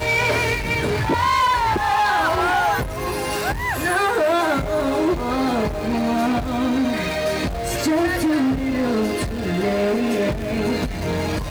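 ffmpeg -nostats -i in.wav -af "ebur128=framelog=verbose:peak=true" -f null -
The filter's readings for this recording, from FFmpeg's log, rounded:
Integrated loudness:
  I:         -20.6 LUFS
  Threshold: -30.6 LUFS
Loudness range:
  LRA:         2.0 LU
  Threshold: -40.7 LUFS
  LRA low:   -21.5 LUFS
  LRA high:  -19.5 LUFS
True peak:
  Peak:      -10.6 dBFS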